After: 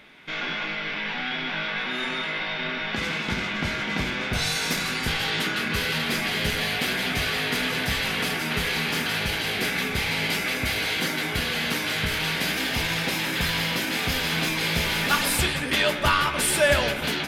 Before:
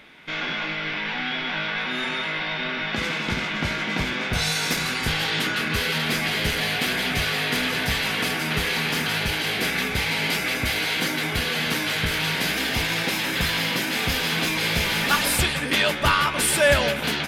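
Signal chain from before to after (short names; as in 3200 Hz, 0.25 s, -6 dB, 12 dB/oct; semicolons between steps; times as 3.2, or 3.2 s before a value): on a send: reverb RT60 0.60 s, pre-delay 5 ms, DRR 10.5 dB; on the sum: gain -2 dB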